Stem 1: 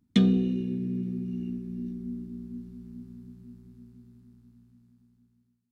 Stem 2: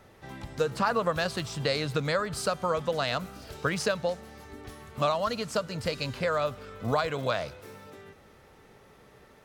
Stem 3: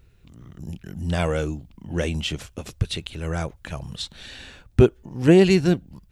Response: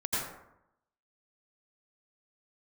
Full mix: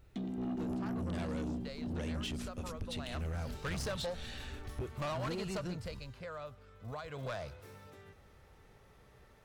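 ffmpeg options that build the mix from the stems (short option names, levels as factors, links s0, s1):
-filter_complex "[0:a]equalizer=f=300:t=o:w=0.56:g=14.5,volume=0.501[s0];[1:a]adynamicequalizer=threshold=0.00631:dfrequency=2200:dqfactor=0.7:tfrequency=2200:tqfactor=0.7:attack=5:release=100:ratio=0.375:range=1.5:mode=cutabove:tftype=highshelf,volume=1.58,afade=t=in:st=2.99:d=0.39:silence=0.223872,afade=t=out:st=5.45:d=0.57:silence=0.281838,afade=t=in:st=7.05:d=0.21:silence=0.375837[s1];[2:a]acompressor=threshold=0.0447:ratio=6,volume=0.473,asplit=2[s2][s3];[s3]apad=whole_len=252126[s4];[s0][s4]sidechaingate=range=0.2:threshold=0.00355:ratio=16:detection=peak[s5];[s5][s1][s2]amix=inputs=3:normalize=0,asubboost=boost=3:cutoff=120,asoftclip=type=tanh:threshold=0.0211"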